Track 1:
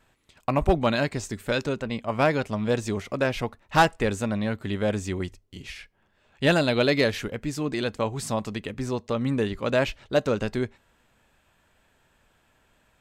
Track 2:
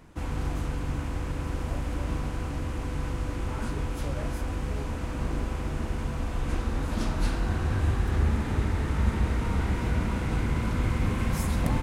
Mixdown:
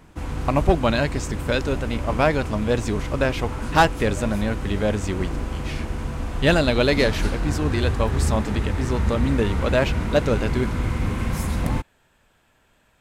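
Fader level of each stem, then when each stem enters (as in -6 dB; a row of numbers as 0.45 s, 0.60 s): +2.5 dB, +2.5 dB; 0.00 s, 0.00 s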